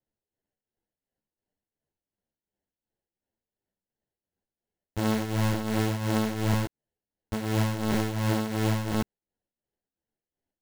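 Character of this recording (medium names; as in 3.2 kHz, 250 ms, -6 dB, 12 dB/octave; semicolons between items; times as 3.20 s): tremolo triangle 2.8 Hz, depth 70%; aliases and images of a low sample rate 1.2 kHz, jitter 0%; a shimmering, thickened sound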